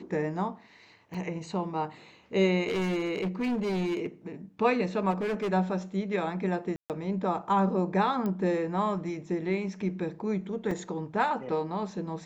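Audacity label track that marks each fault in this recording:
1.140000	1.150000	gap 5 ms
2.680000	4.070000	clipped -26 dBFS
5.100000	5.530000	clipped -26.5 dBFS
6.760000	6.900000	gap 0.138 s
8.260000	8.260000	pop -21 dBFS
10.710000	10.710000	gap 3.3 ms

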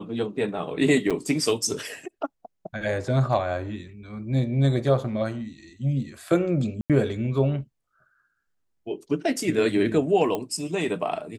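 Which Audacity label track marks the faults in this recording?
1.100000	1.110000	gap 6.3 ms
6.810000	6.900000	gap 87 ms
10.350000	10.350000	pop -15 dBFS

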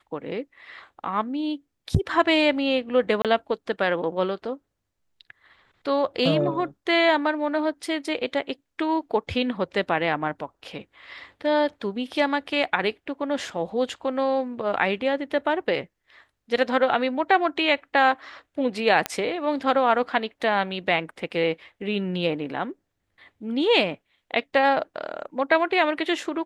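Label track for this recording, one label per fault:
3.220000	3.250000	gap 27 ms
19.060000	19.060000	pop -8 dBFS

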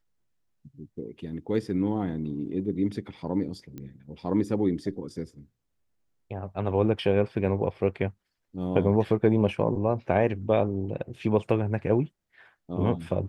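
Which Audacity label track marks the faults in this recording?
3.780000	3.780000	pop -26 dBFS

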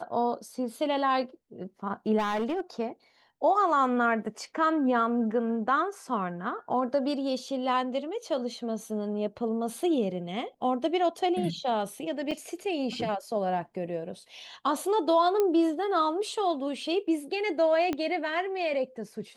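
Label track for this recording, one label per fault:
2.180000	2.610000	clipped -25 dBFS
12.310000	12.310000	gap 5 ms
15.400000	15.400000	pop -14 dBFS
17.930000	17.930000	pop -17 dBFS

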